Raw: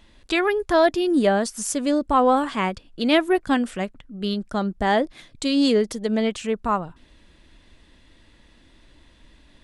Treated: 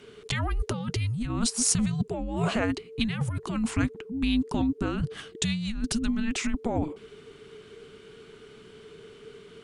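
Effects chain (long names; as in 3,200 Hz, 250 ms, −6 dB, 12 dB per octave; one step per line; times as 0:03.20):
frequency shifter −460 Hz
compressor whose output falls as the input rises −26 dBFS, ratio −1
level −1 dB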